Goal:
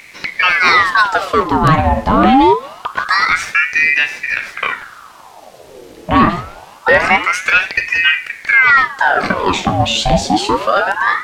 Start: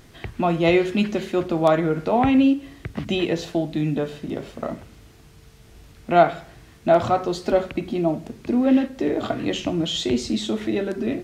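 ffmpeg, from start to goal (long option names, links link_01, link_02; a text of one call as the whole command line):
ffmpeg -i in.wav -af "bandreject=frequency=174:width_type=h:width=4,bandreject=frequency=348:width_type=h:width=4,bandreject=frequency=522:width_type=h:width=4,bandreject=frequency=696:width_type=h:width=4,bandreject=frequency=870:width_type=h:width=4,bandreject=frequency=1044:width_type=h:width=4,bandreject=frequency=1218:width_type=h:width=4,bandreject=frequency=1392:width_type=h:width=4,bandreject=frequency=1566:width_type=h:width=4,bandreject=frequency=1740:width_type=h:width=4,bandreject=frequency=1914:width_type=h:width=4,bandreject=frequency=2088:width_type=h:width=4,bandreject=frequency=2262:width_type=h:width=4,bandreject=frequency=2436:width_type=h:width=4,bandreject=frequency=2610:width_type=h:width=4,bandreject=frequency=2784:width_type=h:width=4,bandreject=frequency=2958:width_type=h:width=4,bandreject=frequency=3132:width_type=h:width=4,bandreject=frequency=3306:width_type=h:width=4,bandreject=frequency=3480:width_type=h:width=4,bandreject=frequency=3654:width_type=h:width=4,bandreject=frequency=3828:width_type=h:width=4,bandreject=frequency=4002:width_type=h:width=4,bandreject=frequency=4176:width_type=h:width=4,bandreject=frequency=4350:width_type=h:width=4,bandreject=frequency=4524:width_type=h:width=4,bandreject=frequency=4698:width_type=h:width=4,bandreject=frequency=4872:width_type=h:width=4,apsyclip=14.5dB,aeval=exprs='val(0)*sin(2*PI*1300*n/s+1300*0.7/0.25*sin(2*PI*0.25*n/s))':channel_layout=same,volume=-1.5dB" out.wav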